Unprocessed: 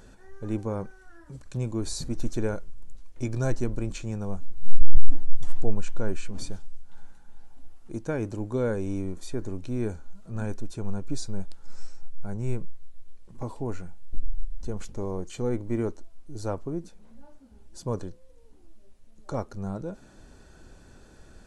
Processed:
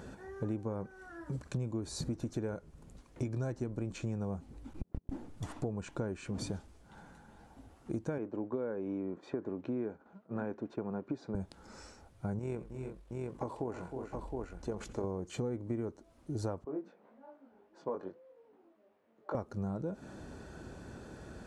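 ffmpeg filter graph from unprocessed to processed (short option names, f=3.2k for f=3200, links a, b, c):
-filter_complex "[0:a]asettb=1/sr,asplit=3[a][b][c];[a]atrim=end=8.184[d];[b]atrim=start=8.18:end=11.35,asetpts=PTS-STARTPTS,afade=t=in:d=0.004:c=qsin,afade=t=out:st=3.166:d=0.004:c=qsin,agate=range=-33dB:threshold=-35dB:ratio=3:release=100:detection=peak,highpass=250,lowpass=2.1k[e];[c]atrim=start=11.346[f];[d][e]acrossfade=d=0.004:c1=hsin:c2=qsin[g];[g][f]acrossfade=d=0.004:c1=qsin:c2=hsin,asettb=1/sr,asplit=3[h][i][j];[h]atrim=end=12.394[k];[i]atrim=start=12.39:end=15.04,asetpts=PTS-STARTPTS,afade=t=in:d=0.004:c=qsin,afade=t=out:st=2.646:d=0.004:c=qsin,bass=f=250:g=-10,treble=f=4k:g=-2,tremolo=f=45:d=0.4,aecho=1:1:84|312|350|716:0.119|0.251|0.178|0.422,atrim=end_sample=116865[l];[j]atrim=start=15.036[m];[k][l]acrossfade=d=0.004:c1=hsin:c2=qsin[n];[n][m]acrossfade=d=0.004:c1=qsin:c2=hsin,asettb=1/sr,asplit=3[o][p][q];[o]atrim=end=16.644[r];[p]atrim=start=16.64:end=19.35,asetpts=PTS-STARTPTS,afade=t=in:d=0.004:c=qsin,afade=t=out:st=2.706:d=0.004:c=qsin,highpass=430,lowpass=2.1k,flanger=delay=19:depth=2.5:speed=1.8[s];[q]atrim=start=19.346[t];[r][s]acrossfade=d=0.004:c1=hsin:c2=qsin[u];[u][t]acrossfade=d=0.004:c1=qsin:c2=hsin,highpass=79,highshelf=f=2.1k:g=-9,acompressor=threshold=-40dB:ratio=12,volume=7dB"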